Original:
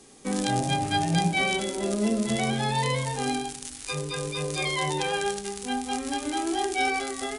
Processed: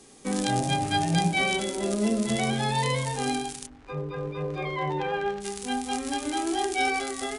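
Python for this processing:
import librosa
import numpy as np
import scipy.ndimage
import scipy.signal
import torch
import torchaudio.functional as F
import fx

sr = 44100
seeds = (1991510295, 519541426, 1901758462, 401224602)

y = fx.lowpass(x, sr, hz=fx.line((3.65, 1100.0), (5.4, 2100.0)), slope=12, at=(3.65, 5.4), fade=0.02)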